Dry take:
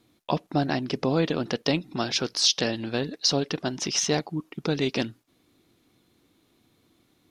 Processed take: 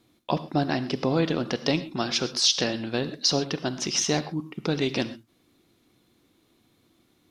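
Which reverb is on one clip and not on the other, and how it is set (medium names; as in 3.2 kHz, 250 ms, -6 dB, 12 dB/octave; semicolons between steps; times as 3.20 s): gated-style reverb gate 150 ms flat, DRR 12 dB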